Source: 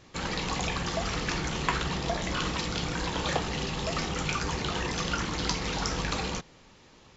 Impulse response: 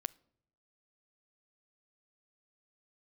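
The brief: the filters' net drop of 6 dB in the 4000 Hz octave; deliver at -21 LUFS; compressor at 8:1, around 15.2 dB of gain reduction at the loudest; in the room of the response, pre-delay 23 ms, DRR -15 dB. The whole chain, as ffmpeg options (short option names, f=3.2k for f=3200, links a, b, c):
-filter_complex "[0:a]equalizer=f=4k:t=o:g=-8,acompressor=threshold=-40dB:ratio=8,asplit=2[a][b];[1:a]atrim=start_sample=2205,adelay=23[c];[b][c]afir=irnorm=-1:irlink=0,volume=16.5dB[d];[a][d]amix=inputs=2:normalize=0,volume=7.5dB"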